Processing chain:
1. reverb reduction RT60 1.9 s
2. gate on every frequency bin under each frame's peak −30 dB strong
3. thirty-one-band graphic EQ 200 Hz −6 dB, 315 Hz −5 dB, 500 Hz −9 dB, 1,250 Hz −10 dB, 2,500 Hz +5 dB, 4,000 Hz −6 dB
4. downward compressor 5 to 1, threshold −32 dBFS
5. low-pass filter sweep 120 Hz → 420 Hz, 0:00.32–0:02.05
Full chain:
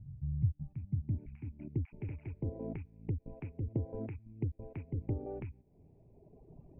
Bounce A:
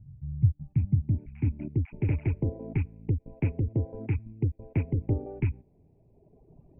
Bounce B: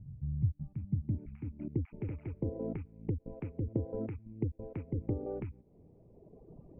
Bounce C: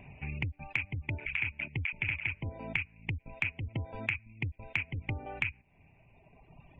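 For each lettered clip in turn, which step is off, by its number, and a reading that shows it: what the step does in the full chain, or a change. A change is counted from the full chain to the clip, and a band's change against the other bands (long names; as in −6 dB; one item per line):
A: 4, average gain reduction 8.0 dB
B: 3, 500 Hz band +3.5 dB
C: 5, 2 kHz band +33.0 dB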